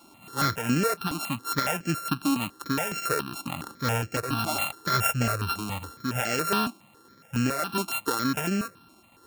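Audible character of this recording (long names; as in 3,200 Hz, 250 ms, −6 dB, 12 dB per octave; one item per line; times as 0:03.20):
a buzz of ramps at a fixed pitch in blocks of 32 samples
tremolo saw down 0.65 Hz, depth 35%
notches that jump at a steady rate 7.2 Hz 480–3,700 Hz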